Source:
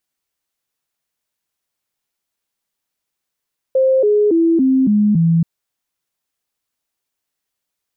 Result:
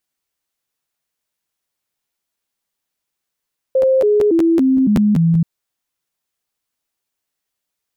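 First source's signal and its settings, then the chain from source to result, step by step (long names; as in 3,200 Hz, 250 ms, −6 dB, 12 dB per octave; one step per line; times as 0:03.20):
stepped sweep 526 Hz down, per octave 3, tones 6, 0.28 s, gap 0.00 s −10 dBFS
regular buffer underruns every 0.19 s, samples 512, repeat, from 0:00.96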